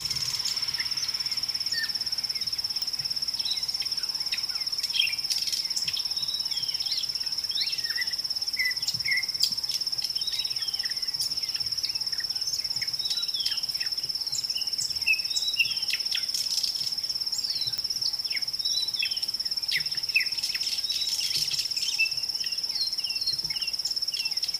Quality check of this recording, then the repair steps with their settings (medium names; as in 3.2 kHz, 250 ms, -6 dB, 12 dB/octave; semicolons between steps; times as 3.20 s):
2.82 s: pop -15 dBFS
17.78 s: pop -15 dBFS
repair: de-click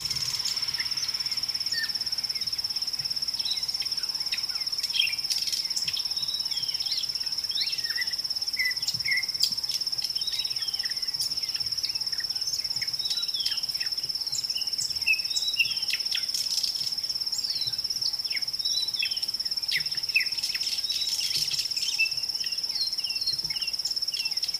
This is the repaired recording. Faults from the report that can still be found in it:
nothing left